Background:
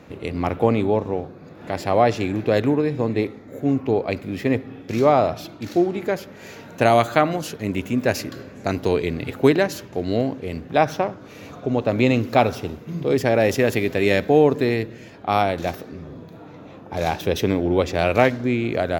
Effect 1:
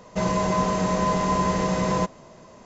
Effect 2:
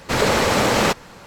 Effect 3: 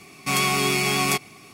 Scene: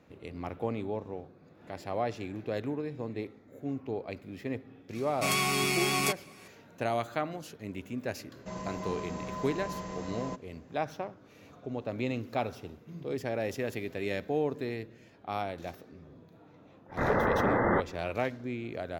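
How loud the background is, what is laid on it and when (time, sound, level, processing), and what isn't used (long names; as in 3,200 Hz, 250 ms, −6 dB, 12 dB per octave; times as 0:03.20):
background −15 dB
0:04.95: mix in 3 −6.5 dB
0:08.30: mix in 1 −16 dB
0:16.88: mix in 2 −8.5 dB, fades 0.02 s + linear-phase brick-wall low-pass 2,100 Hz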